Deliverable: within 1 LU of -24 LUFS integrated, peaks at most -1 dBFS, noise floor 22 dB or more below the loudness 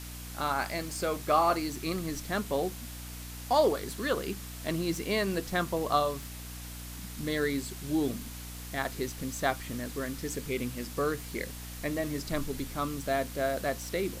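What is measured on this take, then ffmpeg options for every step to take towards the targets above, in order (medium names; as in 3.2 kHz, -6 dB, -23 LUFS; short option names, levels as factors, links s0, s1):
hum 60 Hz; highest harmonic 300 Hz; hum level -41 dBFS; noise floor -42 dBFS; noise floor target -54 dBFS; loudness -32.0 LUFS; peak level -12.0 dBFS; loudness target -24.0 LUFS
-> -af "bandreject=f=60:t=h:w=4,bandreject=f=120:t=h:w=4,bandreject=f=180:t=h:w=4,bandreject=f=240:t=h:w=4,bandreject=f=300:t=h:w=4"
-af "afftdn=nr=12:nf=-42"
-af "volume=2.51"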